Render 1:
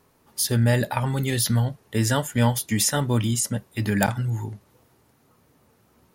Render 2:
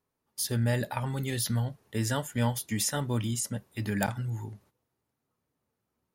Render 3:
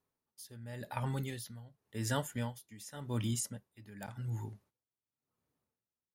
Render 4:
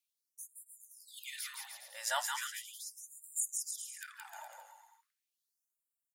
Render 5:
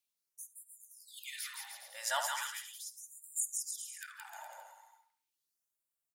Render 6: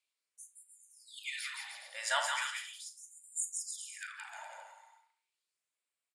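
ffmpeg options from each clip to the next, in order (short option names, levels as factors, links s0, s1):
-af "agate=range=0.2:threshold=0.00282:ratio=16:detection=peak,volume=0.422"
-af "aeval=exprs='val(0)*pow(10,-19*(0.5-0.5*cos(2*PI*0.91*n/s))/20)':c=same,volume=0.708"
-filter_complex "[0:a]asplit=2[s0][s1];[s1]aecho=0:1:170|306|414.8|501.8|571.5:0.631|0.398|0.251|0.158|0.1[s2];[s0][s2]amix=inputs=2:normalize=0,afftfilt=real='re*gte(b*sr/1024,500*pow(7200/500,0.5+0.5*sin(2*PI*0.38*pts/sr)))':imag='im*gte(b*sr/1024,500*pow(7200/500,0.5+0.5*sin(2*PI*0.38*pts/sr)))':win_size=1024:overlap=0.75,volume=1.58"
-filter_complex "[0:a]asplit=2[s0][s1];[s1]adelay=71,lowpass=f=1200:p=1,volume=0.631,asplit=2[s2][s3];[s3]adelay=71,lowpass=f=1200:p=1,volume=0.45,asplit=2[s4][s5];[s5]adelay=71,lowpass=f=1200:p=1,volume=0.45,asplit=2[s6][s7];[s7]adelay=71,lowpass=f=1200:p=1,volume=0.45,asplit=2[s8][s9];[s9]adelay=71,lowpass=f=1200:p=1,volume=0.45,asplit=2[s10][s11];[s11]adelay=71,lowpass=f=1200:p=1,volume=0.45[s12];[s0][s2][s4][s6][s8][s10][s12]amix=inputs=7:normalize=0"
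-filter_complex "[0:a]highpass=440,equalizer=f=810:t=q:w=4:g=-5,equalizer=f=2300:t=q:w=4:g=6,equalizer=f=6000:t=q:w=4:g=-9,lowpass=f=8700:w=0.5412,lowpass=f=8700:w=1.3066,asplit=2[s0][s1];[s1]adelay=38,volume=0.299[s2];[s0][s2]amix=inputs=2:normalize=0,volume=1.41"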